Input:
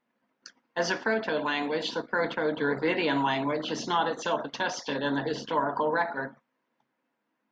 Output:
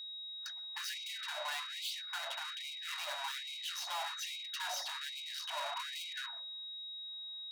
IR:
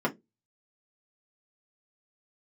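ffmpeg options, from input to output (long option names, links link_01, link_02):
-filter_complex "[0:a]equalizer=frequency=110:width_type=o:width=1.9:gain=11,aeval=exprs='(tanh(126*val(0)+0.55)-tanh(0.55))/126':channel_layout=same,aeval=exprs='val(0)+0.00398*sin(2*PI*3800*n/s)':channel_layout=same,asplit=2[link_01][link_02];[1:a]atrim=start_sample=2205,adelay=126[link_03];[link_02][link_03]afir=irnorm=-1:irlink=0,volume=-32.5dB[link_04];[link_01][link_04]amix=inputs=2:normalize=0,afftfilt=real='re*gte(b*sr/1024,530*pow(2100/530,0.5+0.5*sin(2*PI*1.2*pts/sr)))':imag='im*gte(b*sr/1024,530*pow(2100/530,0.5+0.5*sin(2*PI*1.2*pts/sr)))':win_size=1024:overlap=0.75,volume=5dB"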